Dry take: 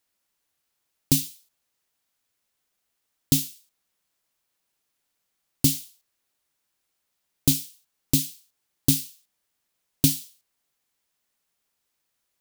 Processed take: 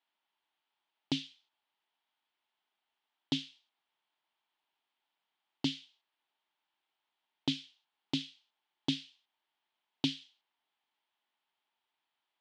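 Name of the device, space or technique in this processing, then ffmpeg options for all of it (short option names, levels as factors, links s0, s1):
phone earpiece: -af "highpass=400,equalizer=f=480:t=q:w=4:g=-7,equalizer=f=880:t=q:w=4:g=9,equalizer=f=3200:t=q:w=4:g=6,lowpass=f=3800:w=0.5412,lowpass=f=3800:w=1.3066,lowshelf=f=340:g=6,bandreject=f=550:w=12,volume=0.596"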